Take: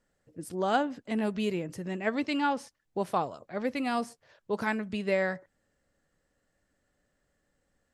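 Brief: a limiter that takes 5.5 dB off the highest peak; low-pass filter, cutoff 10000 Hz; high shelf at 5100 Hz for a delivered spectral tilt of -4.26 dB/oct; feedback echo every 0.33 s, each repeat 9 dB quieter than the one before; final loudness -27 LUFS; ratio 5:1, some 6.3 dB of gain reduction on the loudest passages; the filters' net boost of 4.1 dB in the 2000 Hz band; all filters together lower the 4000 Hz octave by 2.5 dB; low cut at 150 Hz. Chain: HPF 150 Hz; LPF 10000 Hz; bell 2000 Hz +7 dB; bell 4000 Hz -5.5 dB; high shelf 5100 Hz -4.5 dB; compressor 5:1, threshold -28 dBFS; limiter -23 dBFS; feedback echo 0.33 s, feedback 35%, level -9 dB; gain +8.5 dB

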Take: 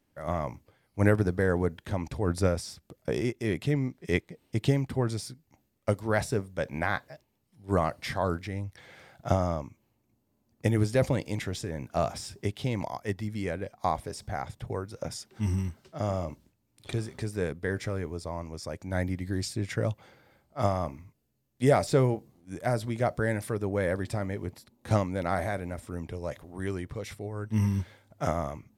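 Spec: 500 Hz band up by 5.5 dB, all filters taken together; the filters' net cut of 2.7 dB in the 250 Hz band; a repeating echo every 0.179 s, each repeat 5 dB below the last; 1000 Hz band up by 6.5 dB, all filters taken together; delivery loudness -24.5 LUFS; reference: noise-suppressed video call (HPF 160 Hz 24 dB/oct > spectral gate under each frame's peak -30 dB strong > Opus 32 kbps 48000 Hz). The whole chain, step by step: HPF 160 Hz 24 dB/oct; bell 250 Hz -5.5 dB; bell 500 Hz +6 dB; bell 1000 Hz +7 dB; feedback echo 0.179 s, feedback 56%, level -5 dB; spectral gate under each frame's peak -30 dB strong; gain +2.5 dB; Opus 32 kbps 48000 Hz

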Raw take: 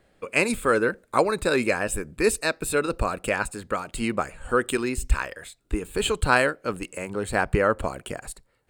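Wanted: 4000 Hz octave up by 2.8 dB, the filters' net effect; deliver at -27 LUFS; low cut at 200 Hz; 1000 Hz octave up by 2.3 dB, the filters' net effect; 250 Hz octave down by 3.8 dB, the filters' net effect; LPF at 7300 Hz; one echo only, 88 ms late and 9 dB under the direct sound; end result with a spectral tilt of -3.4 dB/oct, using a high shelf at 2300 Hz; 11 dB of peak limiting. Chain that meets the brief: HPF 200 Hz; LPF 7300 Hz; bell 250 Hz -3.5 dB; bell 1000 Hz +4 dB; high shelf 2300 Hz -5.5 dB; bell 4000 Hz +8.5 dB; limiter -13 dBFS; echo 88 ms -9 dB; gain +0.5 dB

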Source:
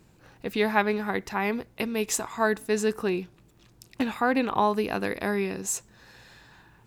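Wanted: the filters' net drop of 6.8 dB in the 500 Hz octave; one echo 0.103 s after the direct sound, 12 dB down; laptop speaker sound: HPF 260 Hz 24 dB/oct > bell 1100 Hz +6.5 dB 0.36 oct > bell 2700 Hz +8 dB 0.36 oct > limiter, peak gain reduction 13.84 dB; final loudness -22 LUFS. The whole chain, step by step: HPF 260 Hz 24 dB/oct; bell 500 Hz -9 dB; bell 1100 Hz +6.5 dB 0.36 oct; bell 2700 Hz +8 dB 0.36 oct; echo 0.103 s -12 dB; gain +10.5 dB; limiter -10.5 dBFS

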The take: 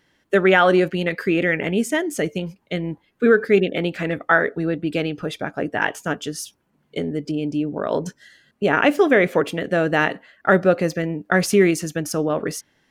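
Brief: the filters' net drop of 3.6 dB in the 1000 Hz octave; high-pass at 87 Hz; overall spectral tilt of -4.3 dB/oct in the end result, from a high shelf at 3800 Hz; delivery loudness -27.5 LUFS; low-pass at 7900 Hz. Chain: HPF 87 Hz; LPF 7900 Hz; bell 1000 Hz -6 dB; high shelf 3800 Hz +4.5 dB; gain -6 dB

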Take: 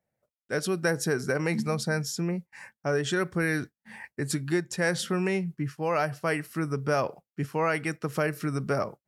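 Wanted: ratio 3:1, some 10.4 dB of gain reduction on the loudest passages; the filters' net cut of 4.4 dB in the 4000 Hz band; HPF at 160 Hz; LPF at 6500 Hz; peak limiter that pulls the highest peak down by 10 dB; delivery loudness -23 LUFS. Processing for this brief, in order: HPF 160 Hz; LPF 6500 Hz; bell 4000 Hz -5 dB; compressor 3:1, threshold -36 dBFS; gain +19.5 dB; limiter -11.5 dBFS

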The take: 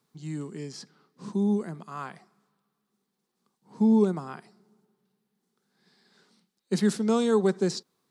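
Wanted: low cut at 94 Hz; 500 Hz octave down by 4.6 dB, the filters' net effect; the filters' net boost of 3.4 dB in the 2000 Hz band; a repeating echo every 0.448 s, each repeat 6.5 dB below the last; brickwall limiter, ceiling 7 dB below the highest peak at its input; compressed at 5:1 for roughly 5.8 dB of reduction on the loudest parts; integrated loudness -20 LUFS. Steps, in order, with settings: HPF 94 Hz; bell 500 Hz -6 dB; bell 2000 Hz +5 dB; compressor 5:1, threshold -25 dBFS; limiter -25 dBFS; feedback echo 0.448 s, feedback 47%, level -6.5 dB; gain +15.5 dB

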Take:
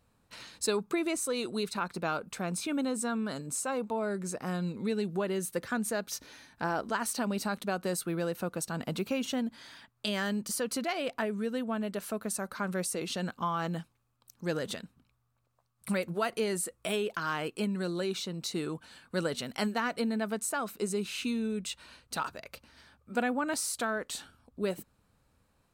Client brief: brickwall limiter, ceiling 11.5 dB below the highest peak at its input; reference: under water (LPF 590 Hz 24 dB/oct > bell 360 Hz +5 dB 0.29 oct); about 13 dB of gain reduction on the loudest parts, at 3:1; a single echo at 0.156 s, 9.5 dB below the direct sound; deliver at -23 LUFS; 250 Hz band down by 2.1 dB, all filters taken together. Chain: bell 250 Hz -4 dB; compressor 3:1, threshold -45 dBFS; limiter -36.5 dBFS; LPF 590 Hz 24 dB/oct; bell 360 Hz +5 dB 0.29 oct; echo 0.156 s -9.5 dB; gain +25 dB

